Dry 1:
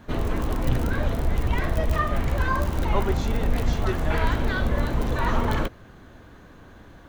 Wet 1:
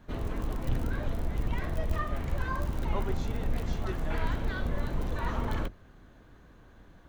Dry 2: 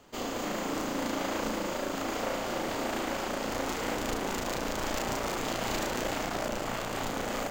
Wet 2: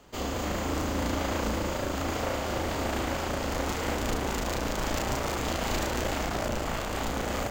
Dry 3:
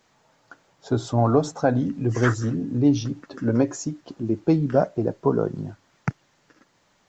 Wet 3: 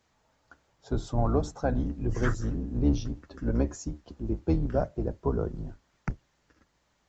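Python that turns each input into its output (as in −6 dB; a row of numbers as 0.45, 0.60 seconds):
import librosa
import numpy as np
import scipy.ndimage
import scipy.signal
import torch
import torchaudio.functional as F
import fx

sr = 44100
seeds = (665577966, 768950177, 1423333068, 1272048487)

y = fx.octave_divider(x, sr, octaves=2, level_db=2.0)
y = y * 10.0 ** (-30 / 20.0) / np.sqrt(np.mean(np.square(y)))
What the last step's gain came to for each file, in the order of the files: −9.5, +1.5, −8.5 decibels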